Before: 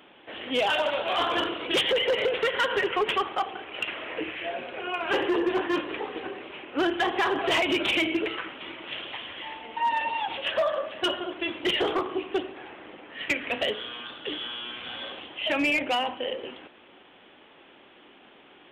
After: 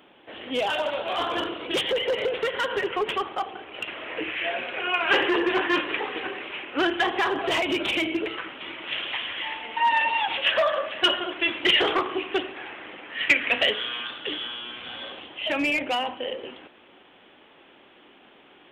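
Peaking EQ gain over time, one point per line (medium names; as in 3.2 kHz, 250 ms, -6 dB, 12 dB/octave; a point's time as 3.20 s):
peaking EQ 2.2 kHz 2.2 oct
3.88 s -2.5 dB
4.49 s +9 dB
6.51 s +9 dB
7.49 s -1 dB
8.28 s -1 dB
9.11 s +8.5 dB
13.98 s +8.5 dB
14.63 s 0 dB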